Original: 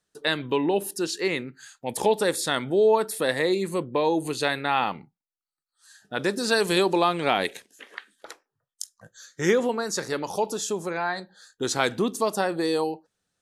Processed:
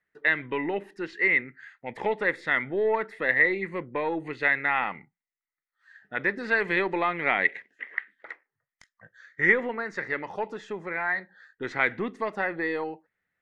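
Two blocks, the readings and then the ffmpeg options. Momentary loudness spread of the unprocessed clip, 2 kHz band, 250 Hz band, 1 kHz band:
17 LU, +6.0 dB, -6.5 dB, -4.0 dB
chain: -af "aeval=exprs='0.501*(cos(1*acos(clip(val(0)/0.501,-1,1)))-cos(1*PI/2))+0.0112*(cos(6*acos(clip(val(0)/0.501,-1,1)))-cos(6*PI/2))':c=same,lowpass=f=2k:t=q:w=11,volume=-6.5dB"

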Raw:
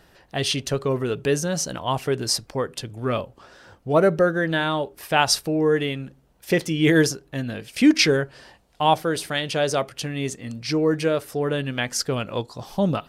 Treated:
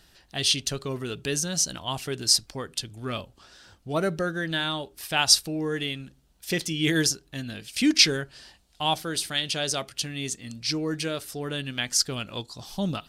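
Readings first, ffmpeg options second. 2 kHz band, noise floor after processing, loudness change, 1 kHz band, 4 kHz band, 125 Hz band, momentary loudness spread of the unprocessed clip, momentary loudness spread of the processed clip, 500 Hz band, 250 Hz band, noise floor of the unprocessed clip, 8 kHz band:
-4.0 dB, -61 dBFS, -3.0 dB, -8.0 dB, +2.5 dB, -6.5 dB, 12 LU, 14 LU, -10.5 dB, -6.5 dB, -58 dBFS, +3.0 dB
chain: -af "equalizer=f=125:t=o:w=1:g=-6,equalizer=f=250:t=o:w=1:g=-3,equalizer=f=500:t=o:w=1:g=-10,equalizer=f=1k:t=o:w=1:g=-6,equalizer=f=2k:t=o:w=1:g=-4,equalizer=f=4k:t=o:w=1:g=4,equalizer=f=8k:t=o:w=1:g=3"

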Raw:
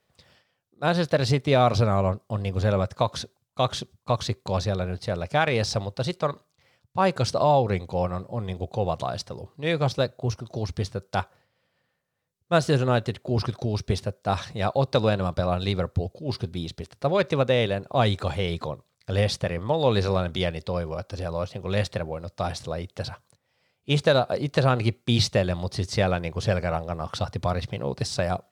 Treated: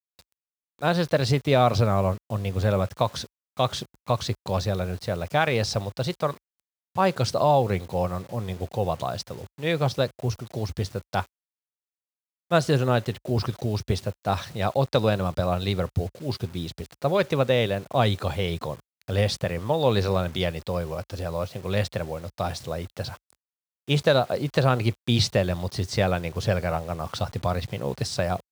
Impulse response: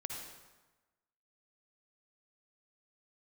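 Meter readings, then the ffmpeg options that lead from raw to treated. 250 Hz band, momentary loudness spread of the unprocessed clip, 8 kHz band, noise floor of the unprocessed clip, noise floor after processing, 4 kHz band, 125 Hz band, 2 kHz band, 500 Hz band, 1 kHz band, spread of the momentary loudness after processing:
0.0 dB, 10 LU, +0.5 dB, -75 dBFS, under -85 dBFS, 0.0 dB, 0.0 dB, 0.0 dB, 0.0 dB, 0.0 dB, 10 LU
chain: -af "acrusher=bits=7:mix=0:aa=0.000001,highpass=f=44:w=0.5412,highpass=f=44:w=1.3066"

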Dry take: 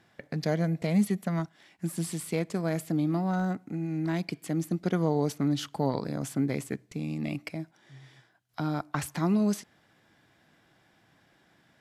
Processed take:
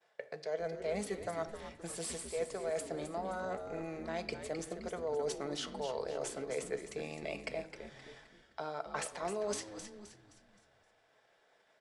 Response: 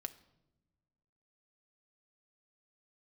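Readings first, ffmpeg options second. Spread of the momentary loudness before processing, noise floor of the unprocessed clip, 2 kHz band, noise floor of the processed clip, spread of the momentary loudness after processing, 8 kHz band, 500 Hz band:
9 LU, -66 dBFS, -4.5 dB, -71 dBFS, 11 LU, -2.0 dB, -3.0 dB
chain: -filter_complex "[0:a]highpass=f=120:w=0.5412,highpass=f=120:w=1.3066,agate=range=-33dB:threshold=-57dB:ratio=3:detection=peak,lowshelf=f=350:t=q:w=3:g=-12.5,areverse,acompressor=threshold=-37dB:ratio=6,areverse,asplit=6[a][b][c][d][e][f];[b]adelay=261,afreqshift=-100,volume=-9dB[g];[c]adelay=522,afreqshift=-200,volume=-16.7dB[h];[d]adelay=783,afreqshift=-300,volume=-24.5dB[i];[e]adelay=1044,afreqshift=-400,volume=-32.2dB[j];[f]adelay=1305,afreqshift=-500,volume=-40dB[k];[a][g][h][i][j][k]amix=inputs=6:normalize=0[l];[1:a]atrim=start_sample=2205[m];[l][m]afir=irnorm=-1:irlink=0,aresample=22050,aresample=44100,volume=4.5dB"

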